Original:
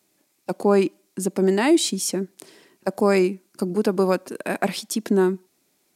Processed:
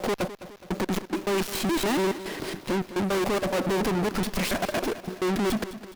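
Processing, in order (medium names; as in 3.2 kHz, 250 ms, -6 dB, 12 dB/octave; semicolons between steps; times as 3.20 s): slices played last to first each 141 ms, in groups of 5; saturation -23.5 dBFS, distortion -6 dB; waveshaping leveller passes 5; on a send: feedback delay 209 ms, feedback 50%, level -14 dB; on the sum: sliding maximum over 5 samples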